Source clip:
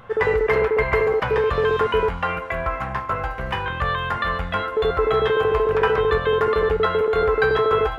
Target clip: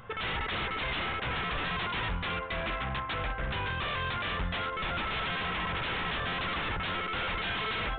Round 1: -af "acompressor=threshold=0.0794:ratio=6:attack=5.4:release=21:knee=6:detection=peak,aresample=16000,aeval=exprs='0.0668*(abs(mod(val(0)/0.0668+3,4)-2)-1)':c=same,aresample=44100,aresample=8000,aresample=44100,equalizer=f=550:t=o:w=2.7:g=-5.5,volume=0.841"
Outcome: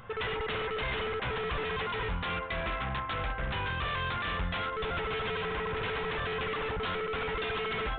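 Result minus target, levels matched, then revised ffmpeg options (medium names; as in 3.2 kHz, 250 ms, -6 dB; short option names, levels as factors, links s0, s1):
compression: peak gain reduction +7.5 dB
-af "aresample=16000,aeval=exprs='0.0668*(abs(mod(val(0)/0.0668+3,4)-2)-1)':c=same,aresample=44100,aresample=8000,aresample=44100,equalizer=f=550:t=o:w=2.7:g=-5.5,volume=0.841"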